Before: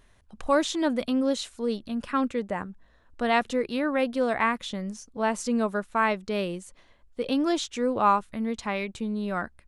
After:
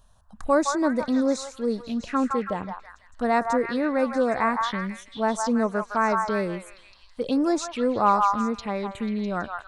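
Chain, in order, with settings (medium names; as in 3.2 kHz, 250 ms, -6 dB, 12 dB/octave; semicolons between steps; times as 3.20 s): touch-sensitive phaser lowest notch 340 Hz, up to 3.1 kHz, full sweep at -24.5 dBFS; repeats whose band climbs or falls 163 ms, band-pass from 1.1 kHz, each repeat 0.7 oct, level -1 dB; trim +2.5 dB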